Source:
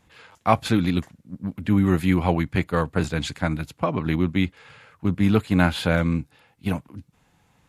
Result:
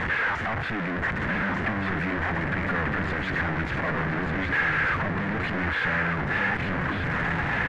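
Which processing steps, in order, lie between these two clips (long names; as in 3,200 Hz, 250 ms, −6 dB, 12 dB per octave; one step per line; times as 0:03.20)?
sign of each sample alone
low-pass with resonance 1,800 Hz, resonance Q 3.5
single-tap delay 1,192 ms −4.5 dB
level −6 dB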